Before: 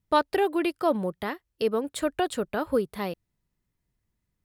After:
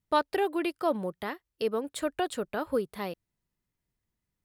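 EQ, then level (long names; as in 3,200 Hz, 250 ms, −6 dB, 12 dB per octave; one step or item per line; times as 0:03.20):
low-shelf EQ 190 Hz −4.5 dB
−3.0 dB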